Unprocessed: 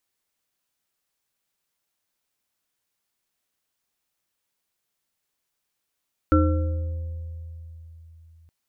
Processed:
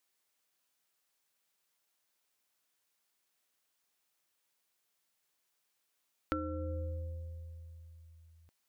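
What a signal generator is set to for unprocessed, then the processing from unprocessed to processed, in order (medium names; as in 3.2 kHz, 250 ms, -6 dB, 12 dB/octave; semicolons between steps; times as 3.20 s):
sine partials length 2.17 s, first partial 81.9 Hz, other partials 308/522/1350 Hz, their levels 1.5/-6/-3 dB, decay 3.84 s, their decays 1.00/1.73/0.61 s, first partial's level -17 dB
bass shelf 200 Hz -10.5 dB; compression 12:1, threshold -33 dBFS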